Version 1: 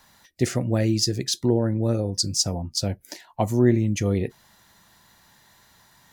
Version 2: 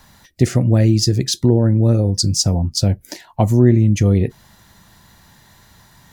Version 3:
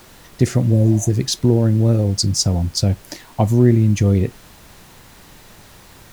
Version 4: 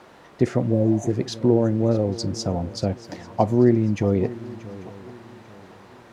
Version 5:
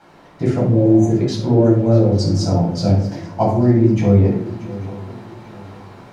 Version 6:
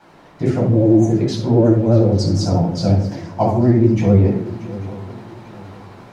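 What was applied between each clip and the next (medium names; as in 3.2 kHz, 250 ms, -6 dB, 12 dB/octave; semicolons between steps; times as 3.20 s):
bass shelf 230 Hz +10.5 dB; compression 1.5:1, threshold -20 dBFS, peak gain reduction 5 dB; trim +5.5 dB
added noise pink -44 dBFS; spectral replace 0.75–1.07 s, 580–5900 Hz before; trim -1 dB
band-pass filter 650 Hz, Q 0.61; shuffle delay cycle 842 ms, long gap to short 3:1, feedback 32%, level -17.5 dB; trim +1.5 dB
level rider gain up to 4 dB; simulated room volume 750 m³, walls furnished, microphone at 7.9 m; trim -8 dB
vibrato 11 Hz 63 cents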